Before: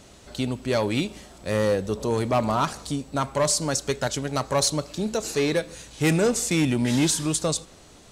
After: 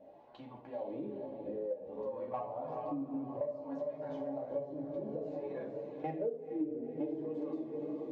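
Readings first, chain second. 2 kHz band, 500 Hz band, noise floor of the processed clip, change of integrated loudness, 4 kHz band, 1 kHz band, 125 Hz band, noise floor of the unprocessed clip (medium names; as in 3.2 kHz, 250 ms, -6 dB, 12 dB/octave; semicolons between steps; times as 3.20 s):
-30.0 dB, -12.0 dB, -54 dBFS, -15.5 dB, under -35 dB, -15.5 dB, -24.0 dB, -50 dBFS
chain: in parallel at -3 dB: peak limiter -20.5 dBFS, peak gain reduction 7 dB; on the sum: level held to a coarse grid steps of 17 dB; peaking EQ 1.3 kHz -14 dB 0.54 oct; wah-wah 0.57 Hz 320–1100 Hz, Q 3.4; tape spacing loss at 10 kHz 33 dB; on a send: echo that smears into a reverb 465 ms, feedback 55%, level -8 dB; on the sum: simulated room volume 850 m³, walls furnished, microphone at 2.3 m; chorus voices 4, 0.3 Hz, delay 11 ms, depth 4.6 ms; compression 5:1, threshold -44 dBFS, peak gain reduction 23 dB; trim +8 dB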